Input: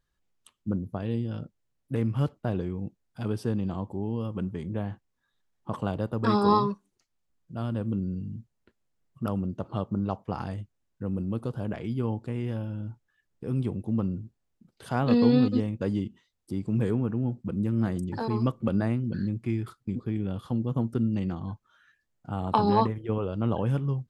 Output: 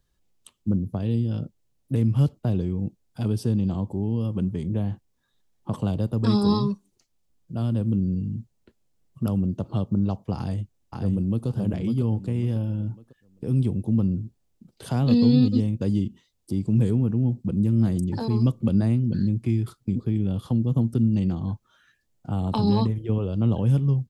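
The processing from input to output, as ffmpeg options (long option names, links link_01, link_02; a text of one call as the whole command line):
ffmpeg -i in.wav -filter_complex "[0:a]asplit=2[link_01][link_02];[link_02]afade=type=in:start_time=10.37:duration=0.01,afade=type=out:start_time=11.47:duration=0.01,aecho=0:1:550|1100|1650|2200:0.562341|0.168702|0.0506107|0.0151832[link_03];[link_01][link_03]amix=inputs=2:normalize=0,equalizer=frequency=1500:width=0.82:gain=-7.5,acrossover=split=240|3000[link_04][link_05][link_06];[link_05]acompressor=threshold=-44dB:ratio=2[link_07];[link_04][link_07][link_06]amix=inputs=3:normalize=0,volume=7.5dB" out.wav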